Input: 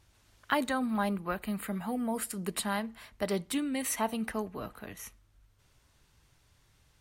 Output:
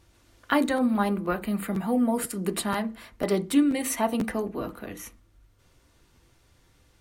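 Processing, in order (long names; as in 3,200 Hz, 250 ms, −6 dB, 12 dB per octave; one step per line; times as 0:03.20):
hollow resonant body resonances 330/510 Hz, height 9 dB, ringing for 45 ms
on a send at −3 dB: high-frequency loss of the air 430 metres + convolution reverb RT60 0.25 s, pre-delay 3 ms
on the sum: regular buffer underruns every 0.49 s, samples 512, repeat, from 0:00.76
level +3 dB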